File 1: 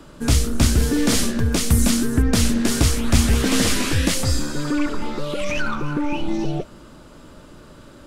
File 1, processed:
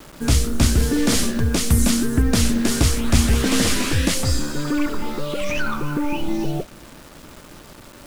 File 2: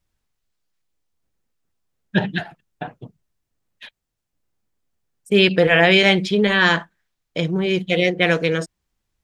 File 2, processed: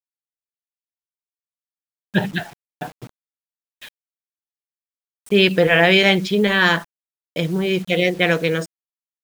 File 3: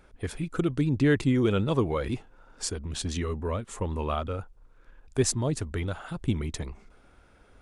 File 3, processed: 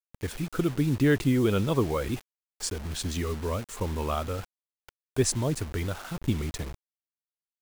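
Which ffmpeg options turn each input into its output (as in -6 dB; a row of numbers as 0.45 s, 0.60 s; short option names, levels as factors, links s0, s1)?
-af "acrusher=bits=6:mix=0:aa=0.000001"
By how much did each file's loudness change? 0.0 LU, 0.0 LU, 0.0 LU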